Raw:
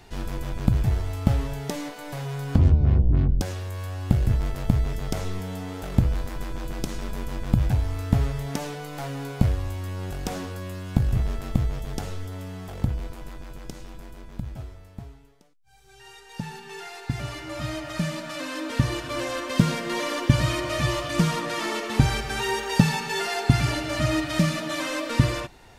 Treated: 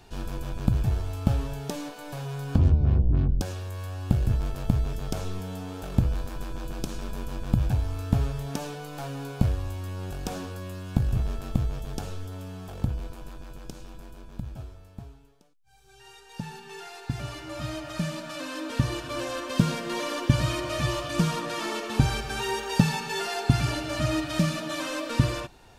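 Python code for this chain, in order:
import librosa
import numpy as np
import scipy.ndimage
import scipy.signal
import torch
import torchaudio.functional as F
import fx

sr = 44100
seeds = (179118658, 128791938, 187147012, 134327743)

y = fx.notch(x, sr, hz=2000.0, q=6.1)
y = y * librosa.db_to_amplitude(-2.5)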